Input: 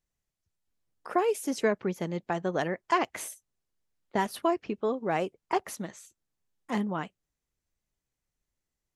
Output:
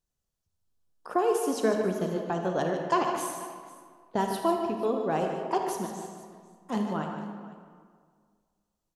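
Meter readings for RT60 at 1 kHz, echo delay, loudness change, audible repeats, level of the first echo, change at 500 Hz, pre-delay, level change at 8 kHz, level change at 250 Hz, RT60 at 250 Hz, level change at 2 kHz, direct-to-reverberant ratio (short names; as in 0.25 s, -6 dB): 1.9 s, 77 ms, +1.5 dB, 3, -12.5 dB, +2.5 dB, 33 ms, +1.5 dB, +2.0 dB, 2.0 s, -3.0 dB, 2.0 dB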